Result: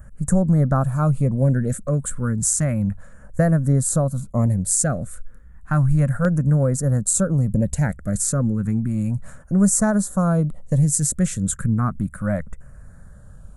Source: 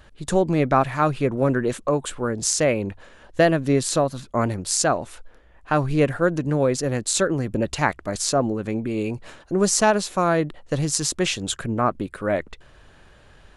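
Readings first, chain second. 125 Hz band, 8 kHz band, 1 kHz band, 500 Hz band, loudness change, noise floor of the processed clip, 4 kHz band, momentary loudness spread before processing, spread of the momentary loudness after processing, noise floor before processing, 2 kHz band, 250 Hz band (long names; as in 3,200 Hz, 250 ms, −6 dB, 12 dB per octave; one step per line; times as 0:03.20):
+8.5 dB, +3.0 dB, −7.0 dB, −5.5 dB, +2.0 dB, −43 dBFS, below −10 dB, 8 LU, 7 LU, −51 dBFS, −6.5 dB, +3.5 dB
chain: drawn EQ curve 200 Hz 0 dB, 360 Hz −21 dB, 540 Hz −10 dB, 890 Hz −18 dB, 1,400 Hz −10 dB, 2,000 Hz −17 dB, 2,800 Hz −29 dB, 5,100 Hz −22 dB, 7,900 Hz −3 dB
in parallel at −1.5 dB: downward compressor, threshold −27 dBFS, peak gain reduction 7.5 dB
on the sum: auto-filter notch saw down 0.32 Hz 330–4,200 Hz
level +5 dB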